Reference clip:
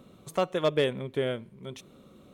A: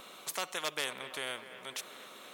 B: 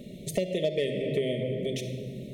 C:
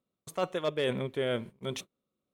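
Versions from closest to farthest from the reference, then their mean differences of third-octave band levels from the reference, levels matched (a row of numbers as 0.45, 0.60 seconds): C, B, A; 6.5, 10.0, 15.0 decibels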